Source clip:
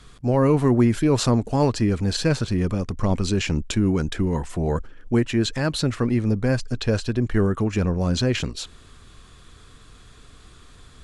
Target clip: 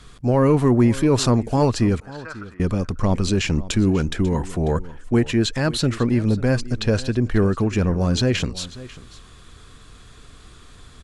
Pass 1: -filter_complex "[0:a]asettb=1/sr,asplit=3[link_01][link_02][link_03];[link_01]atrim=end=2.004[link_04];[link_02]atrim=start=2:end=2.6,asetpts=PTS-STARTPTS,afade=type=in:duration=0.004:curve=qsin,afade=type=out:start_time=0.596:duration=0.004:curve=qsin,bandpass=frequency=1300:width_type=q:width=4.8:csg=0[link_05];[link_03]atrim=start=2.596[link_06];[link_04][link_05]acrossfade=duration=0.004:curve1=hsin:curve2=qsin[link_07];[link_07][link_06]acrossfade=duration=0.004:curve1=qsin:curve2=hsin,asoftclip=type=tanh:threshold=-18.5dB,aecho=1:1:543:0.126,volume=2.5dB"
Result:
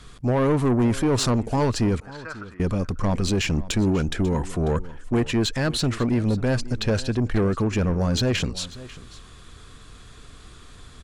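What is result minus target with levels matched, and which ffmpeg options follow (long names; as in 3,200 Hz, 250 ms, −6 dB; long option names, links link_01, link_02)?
soft clipping: distortion +16 dB
-filter_complex "[0:a]asettb=1/sr,asplit=3[link_01][link_02][link_03];[link_01]atrim=end=2.004[link_04];[link_02]atrim=start=2:end=2.6,asetpts=PTS-STARTPTS,afade=type=in:duration=0.004:curve=qsin,afade=type=out:start_time=0.596:duration=0.004:curve=qsin,bandpass=frequency=1300:width_type=q:width=4.8:csg=0[link_05];[link_03]atrim=start=2.596[link_06];[link_04][link_05]acrossfade=duration=0.004:curve1=hsin:curve2=qsin[link_07];[link_07][link_06]acrossfade=duration=0.004:curve1=qsin:curve2=hsin,asoftclip=type=tanh:threshold=-7dB,aecho=1:1:543:0.126,volume=2.5dB"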